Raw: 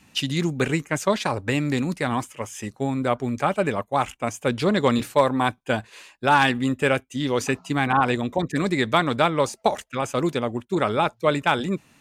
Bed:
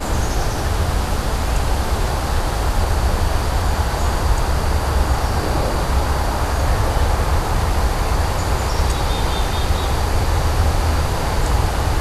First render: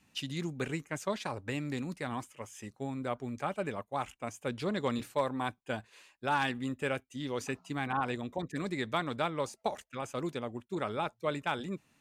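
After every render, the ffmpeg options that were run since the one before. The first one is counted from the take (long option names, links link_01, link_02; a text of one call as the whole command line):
ffmpeg -i in.wav -af "volume=-12.5dB" out.wav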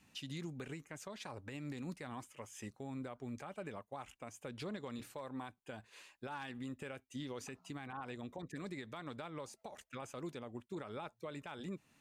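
ffmpeg -i in.wav -af "acompressor=threshold=-33dB:ratio=6,alimiter=level_in=11dB:limit=-24dB:level=0:latency=1:release=273,volume=-11dB" out.wav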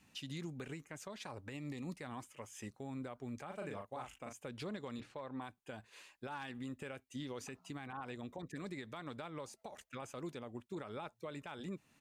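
ffmpeg -i in.wav -filter_complex "[0:a]asettb=1/sr,asplit=3[link_01][link_02][link_03];[link_01]atrim=end=1.534[link_04];[link_02]atrim=start=1.53:end=1.97,asetpts=PTS-STARTPTS,afade=type=in:duration=0.004:curve=qsin,afade=type=out:start_time=0.436:duration=0.004:curve=qsin,asuperstop=centerf=1500:order=8:qfactor=3.8[link_05];[link_03]atrim=start=1.966[link_06];[link_04][link_05]acrossfade=duration=0.004:curve1=hsin:curve2=qsin[link_07];[link_07][link_06]acrossfade=duration=0.004:curve1=qsin:curve2=hsin,asplit=3[link_08][link_09][link_10];[link_08]afade=type=out:start_time=3.49:duration=0.02[link_11];[link_09]asplit=2[link_12][link_13];[link_13]adelay=39,volume=-4dB[link_14];[link_12][link_14]amix=inputs=2:normalize=0,afade=type=in:start_time=3.49:duration=0.02,afade=type=out:start_time=4.32:duration=0.02[link_15];[link_10]afade=type=in:start_time=4.32:duration=0.02[link_16];[link_11][link_15][link_16]amix=inputs=3:normalize=0,asettb=1/sr,asplit=3[link_17][link_18][link_19];[link_17]atrim=end=5.004[link_20];[link_18]atrim=start=5:end=5.42,asetpts=PTS-STARTPTS,afade=type=in:duration=0.004:curve=qsin,afade=type=out:start_time=0.416:duration=0.004:curve=qsin,lowpass=4100[link_21];[link_19]atrim=start=5.416[link_22];[link_20][link_21]acrossfade=duration=0.004:curve1=hsin:curve2=qsin[link_23];[link_23][link_22]acrossfade=duration=0.004:curve1=qsin:curve2=hsin" out.wav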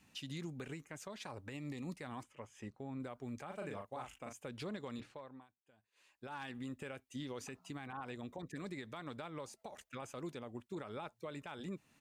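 ffmpeg -i in.wav -filter_complex "[0:a]asettb=1/sr,asplit=3[link_01][link_02][link_03];[link_01]atrim=end=2.234[link_04];[link_02]atrim=start=2.23:end=3,asetpts=PTS-STARTPTS,afade=type=in:duration=0.004:curve=qsin,afade=type=out:start_time=0.766:duration=0.004:curve=qsin,aemphasis=mode=reproduction:type=75kf[link_05];[link_03]atrim=start=2.996[link_06];[link_04][link_05]acrossfade=duration=0.004:curve1=hsin:curve2=qsin[link_07];[link_07][link_06]acrossfade=duration=0.004:curve1=qsin:curve2=hsin,asplit=3[link_08][link_09][link_10];[link_08]atrim=end=5.48,asetpts=PTS-STARTPTS,afade=type=out:start_time=5:duration=0.48:silence=0.0794328[link_11];[link_09]atrim=start=5.48:end=5.94,asetpts=PTS-STARTPTS,volume=-22dB[link_12];[link_10]atrim=start=5.94,asetpts=PTS-STARTPTS,afade=type=in:duration=0.48:silence=0.0794328[link_13];[link_11][link_12][link_13]concat=n=3:v=0:a=1" out.wav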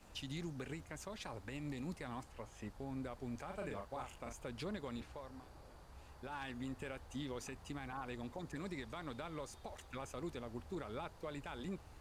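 ffmpeg -i in.wav -i bed.wav -filter_complex "[1:a]volume=-39.5dB[link_01];[0:a][link_01]amix=inputs=2:normalize=0" out.wav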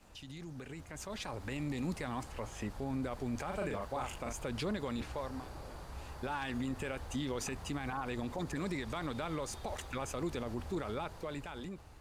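ffmpeg -i in.wav -af "alimiter=level_in=15.5dB:limit=-24dB:level=0:latency=1:release=48,volume=-15.5dB,dynaudnorm=framelen=250:gausssize=9:maxgain=11dB" out.wav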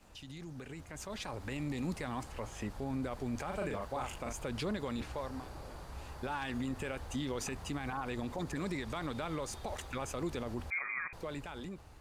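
ffmpeg -i in.wav -filter_complex "[0:a]asettb=1/sr,asplit=3[link_01][link_02][link_03];[link_01]atrim=end=10.704[link_04];[link_02]atrim=start=10.7:end=11.13,asetpts=PTS-STARTPTS,afade=type=in:duration=0.004:curve=qsin,afade=type=out:start_time=0.426:duration=0.004:curve=qsin,lowpass=frequency=2100:width_type=q:width=0.5098,lowpass=frequency=2100:width_type=q:width=0.6013,lowpass=frequency=2100:width_type=q:width=0.9,lowpass=frequency=2100:width_type=q:width=2.563,afreqshift=-2500[link_05];[link_03]atrim=start=11.126[link_06];[link_04][link_05]acrossfade=duration=0.004:curve1=hsin:curve2=qsin[link_07];[link_07][link_06]acrossfade=duration=0.004:curve1=qsin:curve2=hsin" out.wav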